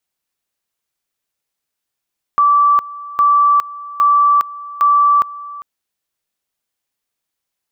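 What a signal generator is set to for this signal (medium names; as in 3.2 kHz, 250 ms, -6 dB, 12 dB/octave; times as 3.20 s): two-level tone 1.16 kHz -8 dBFS, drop 19 dB, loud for 0.41 s, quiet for 0.40 s, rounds 4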